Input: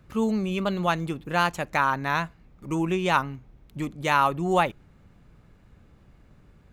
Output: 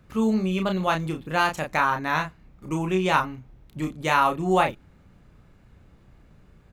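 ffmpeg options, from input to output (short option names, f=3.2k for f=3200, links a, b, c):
-filter_complex "[0:a]asplit=2[a][b];[b]adelay=32,volume=-5dB[c];[a][c]amix=inputs=2:normalize=0"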